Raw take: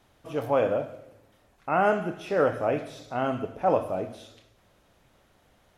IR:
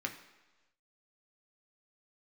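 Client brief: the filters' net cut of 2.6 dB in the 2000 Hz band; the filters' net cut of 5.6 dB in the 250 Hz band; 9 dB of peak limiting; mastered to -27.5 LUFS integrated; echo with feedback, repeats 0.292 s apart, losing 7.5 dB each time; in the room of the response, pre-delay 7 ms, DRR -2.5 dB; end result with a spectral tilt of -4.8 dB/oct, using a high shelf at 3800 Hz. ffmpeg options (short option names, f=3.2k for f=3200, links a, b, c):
-filter_complex "[0:a]equalizer=f=250:t=o:g=-7.5,equalizer=f=2k:t=o:g=-5,highshelf=f=3.8k:g=4,alimiter=limit=-21dB:level=0:latency=1,aecho=1:1:292|584|876|1168|1460:0.422|0.177|0.0744|0.0312|0.0131,asplit=2[a][b];[1:a]atrim=start_sample=2205,adelay=7[c];[b][c]afir=irnorm=-1:irlink=0,volume=0dB[d];[a][d]amix=inputs=2:normalize=0,volume=1.5dB"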